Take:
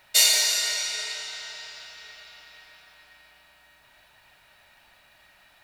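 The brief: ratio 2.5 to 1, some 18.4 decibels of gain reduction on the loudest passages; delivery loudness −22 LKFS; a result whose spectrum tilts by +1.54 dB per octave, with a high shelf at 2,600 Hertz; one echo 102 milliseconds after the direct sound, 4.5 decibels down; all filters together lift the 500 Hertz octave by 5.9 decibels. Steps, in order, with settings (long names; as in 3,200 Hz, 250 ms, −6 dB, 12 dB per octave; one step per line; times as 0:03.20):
parametric band 500 Hz +7.5 dB
high-shelf EQ 2,600 Hz +5 dB
downward compressor 2.5 to 1, threshold −39 dBFS
single-tap delay 102 ms −4.5 dB
level +11.5 dB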